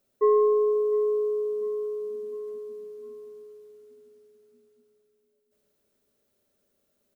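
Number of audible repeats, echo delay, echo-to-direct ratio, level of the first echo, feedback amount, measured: 3, 0.702 s, -16.0 dB, -17.0 dB, 46%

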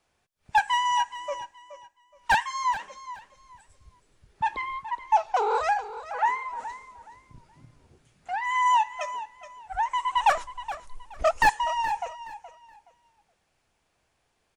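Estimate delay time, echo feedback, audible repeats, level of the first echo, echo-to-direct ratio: 0.422 s, 24%, 2, -13.5 dB, -13.5 dB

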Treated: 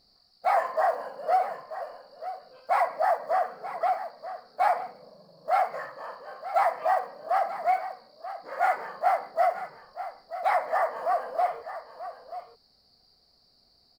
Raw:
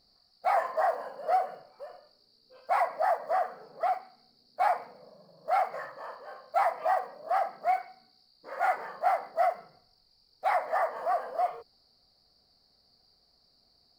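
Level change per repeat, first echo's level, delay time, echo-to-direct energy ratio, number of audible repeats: no steady repeat, -12.5 dB, 0.935 s, -12.5 dB, 1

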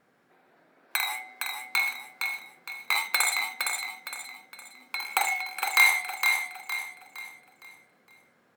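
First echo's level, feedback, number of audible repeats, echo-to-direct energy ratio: -5.0 dB, 38%, 4, -4.5 dB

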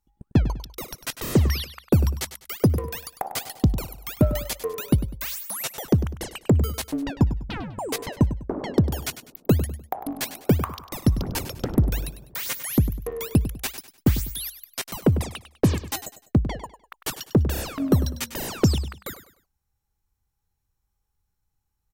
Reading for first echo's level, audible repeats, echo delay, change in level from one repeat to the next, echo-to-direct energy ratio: -12.5 dB, 3, 0.1 s, -10.0 dB, -12.0 dB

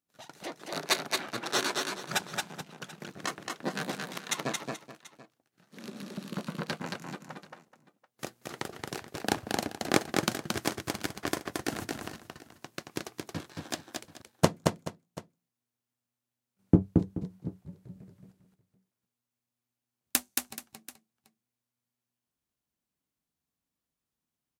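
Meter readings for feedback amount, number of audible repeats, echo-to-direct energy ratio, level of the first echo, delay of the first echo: no steady repeat, 3, -3.0 dB, -3.5 dB, 0.224 s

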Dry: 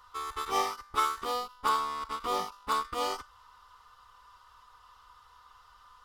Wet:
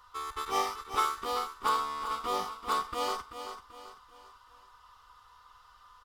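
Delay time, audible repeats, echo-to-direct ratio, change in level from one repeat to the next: 0.386 s, 4, -8.5 dB, -8.0 dB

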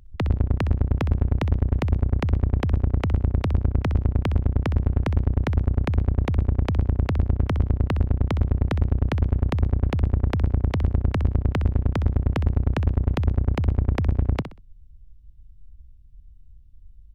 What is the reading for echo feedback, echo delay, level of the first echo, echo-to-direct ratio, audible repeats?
26%, 63 ms, -10.5 dB, -10.0 dB, 3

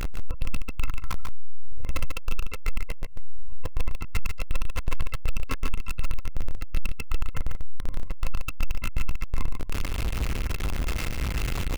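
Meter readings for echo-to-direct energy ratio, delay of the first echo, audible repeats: -5.5 dB, 0.143 s, 1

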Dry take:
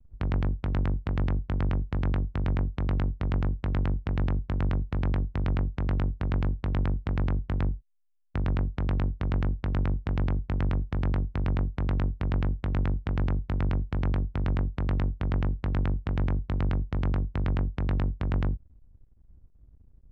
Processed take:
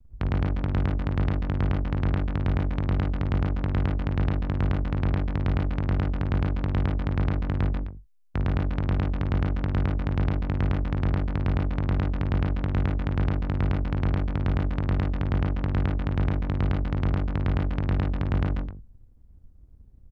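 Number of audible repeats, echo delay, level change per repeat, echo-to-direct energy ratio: 3, 54 ms, no steady repeat, -3.0 dB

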